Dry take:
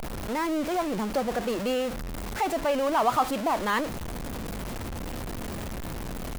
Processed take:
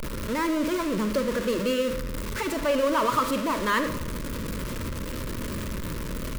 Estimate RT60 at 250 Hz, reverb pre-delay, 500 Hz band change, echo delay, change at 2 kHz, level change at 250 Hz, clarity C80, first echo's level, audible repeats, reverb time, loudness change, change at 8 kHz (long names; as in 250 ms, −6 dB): 1.0 s, 36 ms, +1.5 dB, no echo audible, +3.0 dB, +3.0 dB, 12.0 dB, no echo audible, no echo audible, 1.0 s, +1.5 dB, +2.5 dB